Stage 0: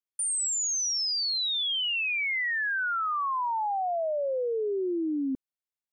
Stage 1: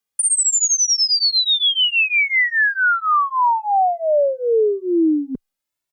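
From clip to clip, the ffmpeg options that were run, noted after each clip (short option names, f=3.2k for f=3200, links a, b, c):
-filter_complex "[0:a]acontrast=45,asplit=2[a][b];[b]adelay=2.1,afreqshift=1.3[c];[a][c]amix=inputs=2:normalize=1,volume=8.5dB"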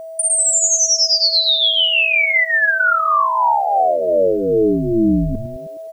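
-filter_complex "[0:a]asplit=8[a][b][c][d][e][f][g][h];[b]adelay=104,afreqshift=-140,volume=-3.5dB[i];[c]adelay=208,afreqshift=-280,volume=-9.5dB[j];[d]adelay=312,afreqshift=-420,volume=-15.5dB[k];[e]adelay=416,afreqshift=-560,volume=-21.6dB[l];[f]adelay=520,afreqshift=-700,volume=-27.6dB[m];[g]adelay=624,afreqshift=-840,volume=-33.6dB[n];[h]adelay=728,afreqshift=-980,volume=-39.6dB[o];[a][i][j][k][l][m][n][o]amix=inputs=8:normalize=0,aeval=exprs='val(0)+0.0355*sin(2*PI*650*n/s)':c=same,acrusher=bits=8:mix=0:aa=0.000001"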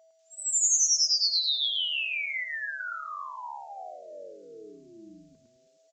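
-filter_complex "[0:a]aderivative,asplit=2[a][b];[b]aecho=0:1:107:0.473[c];[a][c]amix=inputs=2:normalize=0,aresample=16000,aresample=44100,volume=-7.5dB"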